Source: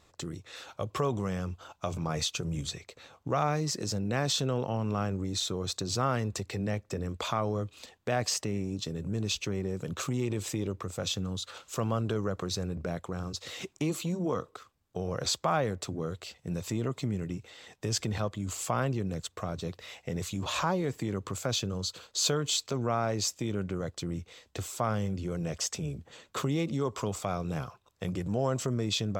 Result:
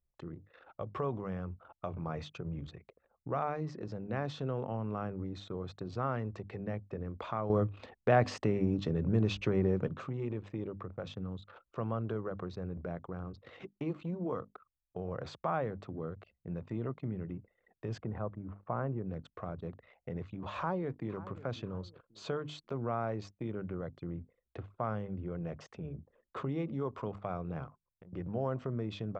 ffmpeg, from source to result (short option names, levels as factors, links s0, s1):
-filter_complex "[0:a]asplit=3[s0][s1][s2];[s0]afade=t=out:st=17.99:d=0.02[s3];[s1]lowpass=1500,afade=t=in:st=17.99:d=0.02,afade=t=out:st=19.05:d=0.02[s4];[s2]afade=t=in:st=19.05:d=0.02[s5];[s3][s4][s5]amix=inputs=3:normalize=0,asplit=2[s6][s7];[s7]afade=t=in:st=20.55:d=0.01,afade=t=out:st=21.14:d=0.01,aecho=0:1:540|1080|1620|2160:0.149624|0.0673306|0.0302988|0.0136344[s8];[s6][s8]amix=inputs=2:normalize=0,asettb=1/sr,asplit=3[s9][s10][s11];[s9]atrim=end=27.674[s12];[s10]atrim=start=27.67:end=28.13,asetpts=PTS-STARTPTS,afade=t=in:d=0.004:c=qsin,afade=t=out:st=0.456:d=0.004:c=qsin,acompressor=threshold=0.00631:ratio=16:attack=3.2:release=140:knee=1:detection=peak[s13];[s11]atrim=start=28.126[s14];[s12][s13]acrossfade=d=0.004:c1=hsin:c2=qsin[s15];[s15][s14]acrossfade=d=0.004:c1=qsin:c2=hsin,asplit=3[s16][s17][s18];[s16]atrim=end=7.502[s19];[s17]atrim=start=7.498:end=9.882,asetpts=PTS-STARTPTS,volume=2.99[s20];[s18]atrim=start=9.878[s21];[s19][s20]acrossfade=d=0.004:c1=hsin:c2=hsin[s22];[s22][s21]acrossfade=d=0.004:c1=hsin:c2=hsin,lowpass=1800,bandreject=f=50:t=h:w=6,bandreject=f=100:t=h:w=6,bandreject=f=150:t=h:w=6,bandreject=f=200:t=h:w=6,bandreject=f=250:t=h:w=6,bandreject=f=300:t=h:w=6,anlmdn=0.01,volume=0.562"